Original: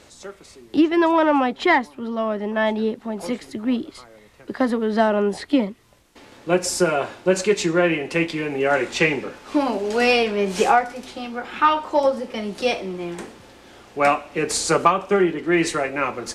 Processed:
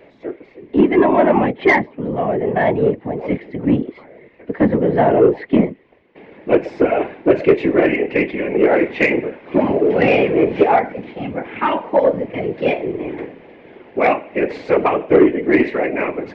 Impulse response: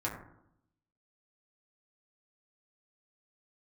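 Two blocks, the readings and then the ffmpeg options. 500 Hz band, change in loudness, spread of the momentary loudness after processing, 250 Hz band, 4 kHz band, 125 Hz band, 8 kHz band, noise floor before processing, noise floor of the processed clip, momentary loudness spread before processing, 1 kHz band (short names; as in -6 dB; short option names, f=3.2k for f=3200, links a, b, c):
+6.0 dB, +4.0 dB, 13 LU, +5.0 dB, -7.0 dB, +6.5 dB, under -25 dB, -50 dBFS, -47 dBFS, 13 LU, +1.0 dB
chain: -af "highpass=120,equalizer=f=150:t=q:w=4:g=-7,equalizer=f=250:t=q:w=4:g=7,equalizer=f=400:t=q:w=4:g=10,equalizer=f=610:t=q:w=4:g=5,equalizer=f=1.3k:t=q:w=4:g=-9,equalizer=f=2.1k:t=q:w=4:g=7,lowpass=f=2.6k:w=0.5412,lowpass=f=2.6k:w=1.3066,afftfilt=real='hypot(re,im)*cos(2*PI*random(0))':imag='hypot(re,im)*sin(2*PI*random(1))':win_size=512:overlap=0.75,acontrast=79"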